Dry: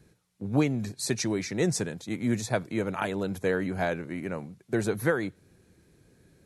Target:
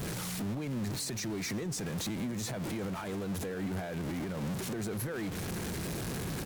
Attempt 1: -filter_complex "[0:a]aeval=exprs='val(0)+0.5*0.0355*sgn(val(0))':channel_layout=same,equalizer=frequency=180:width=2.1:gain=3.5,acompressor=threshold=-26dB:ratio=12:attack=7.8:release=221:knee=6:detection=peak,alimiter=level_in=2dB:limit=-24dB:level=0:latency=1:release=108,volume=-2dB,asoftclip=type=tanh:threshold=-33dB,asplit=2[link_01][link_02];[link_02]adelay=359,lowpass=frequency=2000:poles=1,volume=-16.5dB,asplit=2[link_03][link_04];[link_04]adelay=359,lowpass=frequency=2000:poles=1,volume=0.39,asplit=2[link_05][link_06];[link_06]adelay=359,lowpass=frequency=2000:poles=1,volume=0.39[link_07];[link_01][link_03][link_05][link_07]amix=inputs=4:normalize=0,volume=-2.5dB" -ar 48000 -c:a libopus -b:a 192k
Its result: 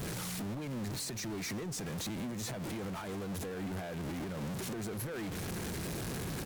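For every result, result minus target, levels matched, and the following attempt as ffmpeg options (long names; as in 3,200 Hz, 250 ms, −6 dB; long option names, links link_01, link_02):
downward compressor: peak gain reduction +11.5 dB; soft clipping: distortion +11 dB
-filter_complex "[0:a]aeval=exprs='val(0)+0.5*0.0355*sgn(val(0))':channel_layout=same,equalizer=frequency=180:width=2.1:gain=3.5,alimiter=level_in=2dB:limit=-24dB:level=0:latency=1:release=108,volume=-2dB,asoftclip=type=tanh:threshold=-33dB,asplit=2[link_01][link_02];[link_02]adelay=359,lowpass=frequency=2000:poles=1,volume=-16.5dB,asplit=2[link_03][link_04];[link_04]adelay=359,lowpass=frequency=2000:poles=1,volume=0.39,asplit=2[link_05][link_06];[link_06]adelay=359,lowpass=frequency=2000:poles=1,volume=0.39[link_07];[link_01][link_03][link_05][link_07]amix=inputs=4:normalize=0,volume=-2.5dB" -ar 48000 -c:a libopus -b:a 192k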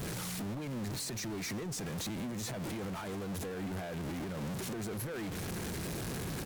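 soft clipping: distortion +11 dB
-filter_complex "[0:a]aeval=exprs='val(0)+0.5*0.0355*sgn(val(0))':channel_layout=same,equalizer=frequency=180:width=2.1:gain=3.5,alimiter=level_in=2dB:limit=-24dB:level=0:latency=1:release=108,volume=-2dB,asoftclip=type=tanh:threshold=-25dB,asplit=2[link_01][link_02];[link_02]adelay=359,lowpass=frequency=2000:poles=1,volume=-16.5dB,asplit=2[link_03][link_04];[link_04]adelay=359,lowpass=frequency=2000:poles=1,volume=0.39,asplit=2[link_05][link_06];[link_06]adelay=359,lowpass=frequency=2000:poles=1,volume=0.39[link_07];[link_01][link_03][link_05][link_07]amix=inputs=4:normalize=0,volume=-2.5dB" -ar 48000 -c:a libopus -b:a 192k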